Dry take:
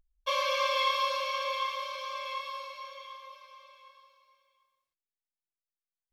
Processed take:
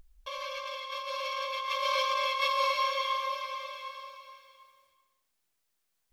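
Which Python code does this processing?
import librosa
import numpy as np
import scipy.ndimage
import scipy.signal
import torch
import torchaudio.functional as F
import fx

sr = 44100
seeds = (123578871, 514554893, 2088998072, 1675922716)

y = fx.over_compress(x, sr, threshold_db=-41.0, ratio=-1.0)
y = y + 10.0 ** (-13.5 / 20.0) * np.pad(y, (int(379 * sr / 1000.0), 0))[:len(y)]
y = F.gain(torch.from_numpy(y), 8.0).numpy()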